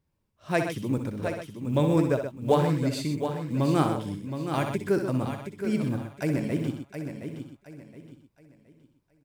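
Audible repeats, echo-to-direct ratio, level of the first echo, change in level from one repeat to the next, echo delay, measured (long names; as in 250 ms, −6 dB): 9, −3.0 dB, −8.5 dB, repeats not evenly spaced, 61 ms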